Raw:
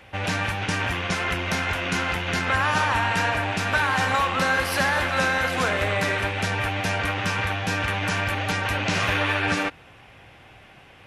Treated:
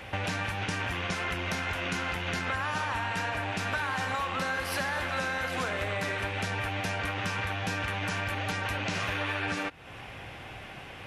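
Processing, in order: compressor 4:1, threshold -37 dBFS, peak gain reduction 16 dB; gain +5.5 dB

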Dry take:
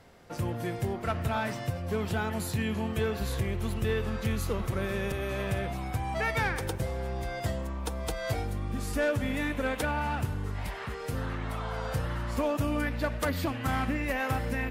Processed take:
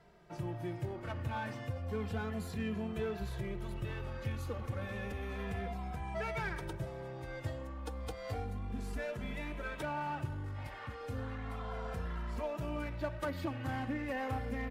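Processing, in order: high shelf 4700 Hz -10.5 dB; in parallel at -5.5 dB: hard clip -35 dBFS, distortion -6 dB; on the sum: endless flanger 2.6 ms -0.32 Hz; gain -6.5 dB

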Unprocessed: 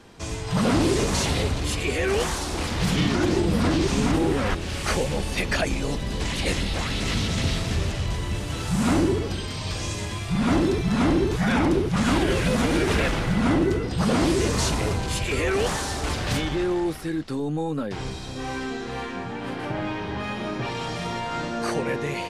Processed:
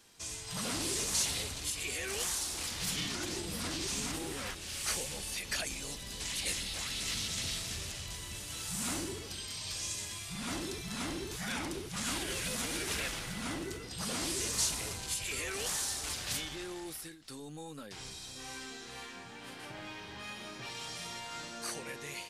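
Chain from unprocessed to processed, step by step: pre-emphasis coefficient 0.9; ending taper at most 100 dB/s

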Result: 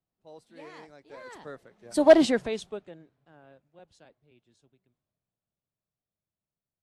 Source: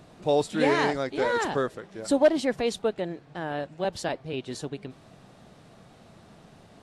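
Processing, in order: Doppler pass-by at 2.18, 23 m/s, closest 2.1 m; three-band expander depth 40%; gain +3 dB

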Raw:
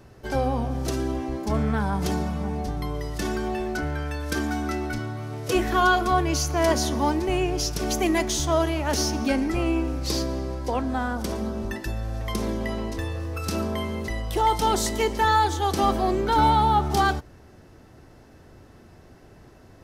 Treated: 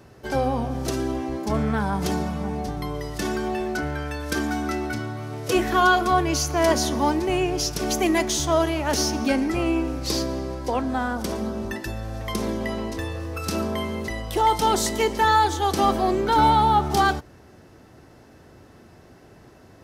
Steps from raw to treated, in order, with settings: HPF 96 Hz 6 dB/oct; gain +2 dB

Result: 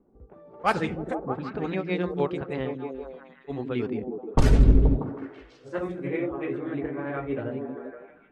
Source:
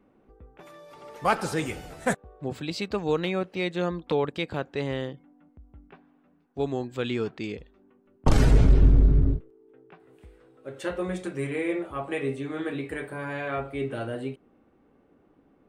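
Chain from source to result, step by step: low-pass opened by the level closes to 720 Hz, open at -17 dBFS; delay with a stepping band-pass 0.296 s, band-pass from 210 Hz, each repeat 0.7 oct, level -1 dB; granular stretch 0.53×, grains 0.154 s; gain +1 dB

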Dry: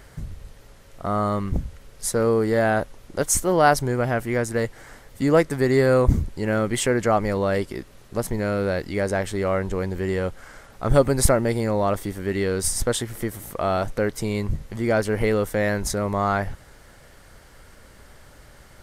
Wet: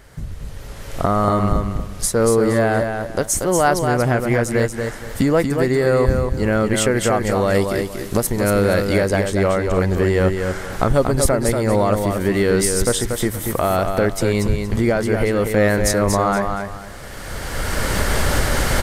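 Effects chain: recorder AGC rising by 18 dB/s; 6.91–8.98 high shelf 6700 Hz +10 dB; feedback echo 0.235 s, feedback 27%, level -5.5 dB

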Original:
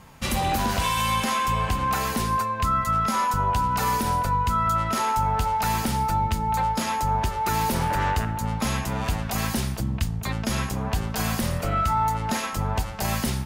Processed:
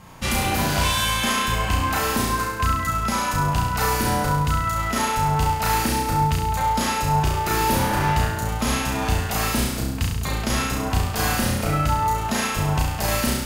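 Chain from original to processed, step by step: flutter echo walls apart 5.8 m, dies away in 0.89 s; gain +1.5 dB

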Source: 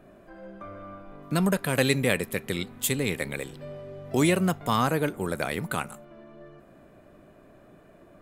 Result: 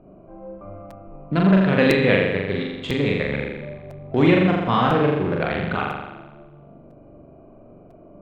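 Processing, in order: Wiener smoothing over 25 samples; LPF 3400 Hz 24 dB/oct; on a send: flutter echo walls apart 7.2 m, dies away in 1.1 s; on the sum: crackling interface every 1.00 s, samples 256, repeat, from 0.9; gain +4 dB

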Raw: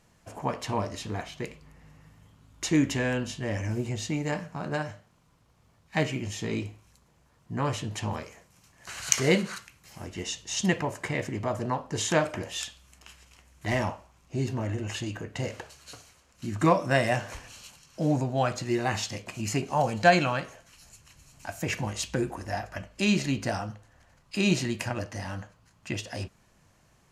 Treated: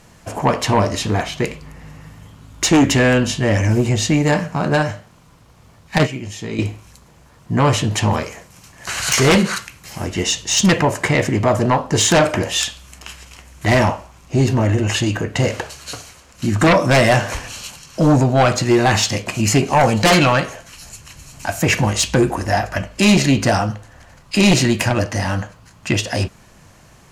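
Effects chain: 5.98–6.59 gate -25 dBFS, range -11 dB; in parallel at -4.5 dB: sine folder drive 18 dB, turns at -2 dBFS; on the sum: gain -3 dB

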